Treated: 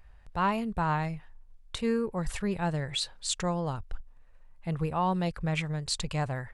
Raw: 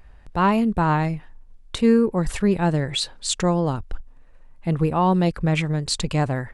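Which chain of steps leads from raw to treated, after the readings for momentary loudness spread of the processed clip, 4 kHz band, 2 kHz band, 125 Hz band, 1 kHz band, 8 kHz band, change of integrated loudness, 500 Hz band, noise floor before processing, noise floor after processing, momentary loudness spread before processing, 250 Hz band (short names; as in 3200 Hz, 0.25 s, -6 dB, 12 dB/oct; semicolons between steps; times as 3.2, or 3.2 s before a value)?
11 LU, -6.5 dB, -6.5 dB, -9.5 dB, -7.5 dB, -6.5 dB, -9.5 dB, -10.0 dB, -47 dBFS, -54 dBFS, 10 LU, -11.5 dB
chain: bell 290 Hz -8.5 dB 1.2 oct; gain -6.5 dB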